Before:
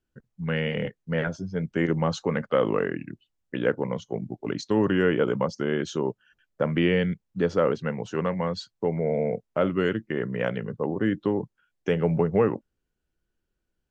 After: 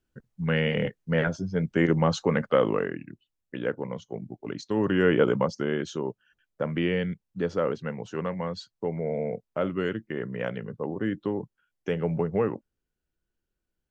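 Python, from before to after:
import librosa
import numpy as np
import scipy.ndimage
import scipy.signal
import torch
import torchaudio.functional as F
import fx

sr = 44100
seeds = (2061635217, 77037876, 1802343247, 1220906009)

y = fx.gain(x, sr, db=fx.line((2.48, 2.0), (3.05, -5.0), (4.66, -5.0), (5.19, 2.5), (6.02, -4.0)))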